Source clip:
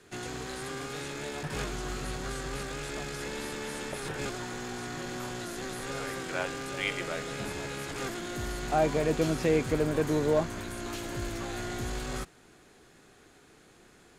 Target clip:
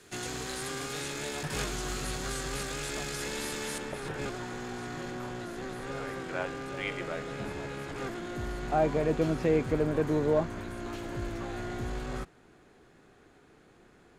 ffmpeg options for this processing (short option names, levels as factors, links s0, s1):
-af "asetnsamples=n=441:p=0,asendcmd='3.78 highshelf g -7;5.11 highshelf g -12',highshelf=f=3200:g=6"